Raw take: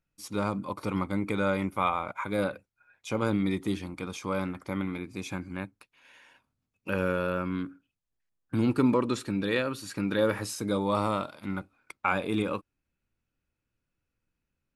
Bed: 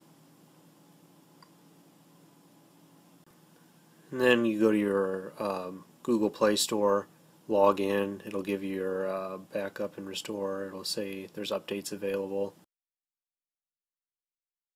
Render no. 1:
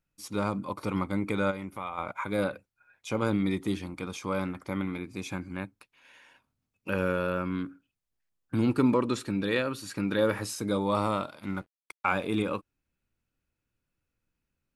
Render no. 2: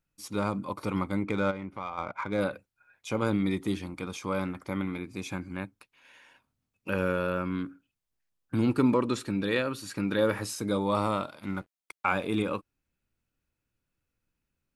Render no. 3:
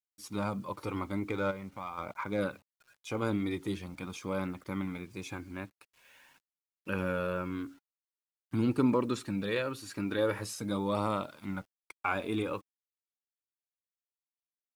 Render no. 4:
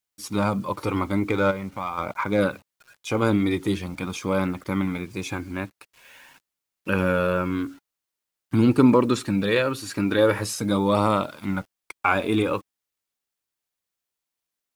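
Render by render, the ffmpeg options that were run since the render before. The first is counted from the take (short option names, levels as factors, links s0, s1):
-filter_complex "[0:a]asplit=3[s0][s1][s2];[s0]afade=t=out:st=1.5:d=0.02[s3];[s1]acompressor=threshold=0.0112:ratio=2:attack=3.2:release=140:knee=1:detection=peak,afade=t=in:st=1.5:d=0.02,afade=t=out:st=1.97:d=0.02[s4];[s2]afade=t=in:st=1.97:d=0.02[s5];[s3][s4][s5]amix=inputs=3:normalize=0,asettb=1/sr,asplit=3[s6][s7][s8];[s6]atrim=end=11.454[s9];[s7]atrim=start=11.45:end=12.26,asetpts=PTS-STARTPTS,afade=t=in:d=0.004:c=qsin,afade=t=out:st=0.806:d=0.004:c=qsin,aeval=exprs='sgn(val(0))*max(abs(val(0))-0.00141,0)':c=same[s10];[s8]atrim=start=12.256[s11];[s9][s10]acrossfade=d=0.004:c1=hsin:c2=qsin[s12];[s12][s11]acrossfade=d=0.004:c1=qsin:c2=hsin"
-filter_complex "[0:a]asettb=1/sr,asplit=3[s0][s1][s2];[s0]atrim=end=1.234[s3];[s1]atrim=start=1.23:end=2.41,asetpts=PTS-STARTPTS,afade=t=in:d=0.004:c=qsin,afade=t=out:st=1.176:d=0.004:c=qsin,adynamicsmooth=sensitivity=5.5:basefreq=3300[s4];[s2]atrim=start=2.406[s5];[s3][s4]acrossfade=d=0.004:c1=hsin:c2=qsin[s6];[s6][s5]acrossfade=d=0.004:c1=qsin:c2=hsin"
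-af "acrusher=bits=9:mix=0:aa=0.000001,flanger=delay=0:depth=3.1:regen=-54:speed=0.45:shape=triangular"
-af "volume=3.35"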